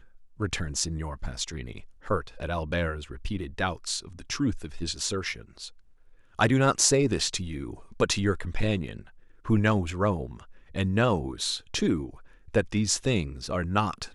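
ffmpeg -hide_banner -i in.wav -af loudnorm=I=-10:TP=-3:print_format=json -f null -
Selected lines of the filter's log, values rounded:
"input_i" : "-28.1",
"input_tp" : "-5.6",
"input_lra" : "5.4",
"input_thresh" : "-38.6",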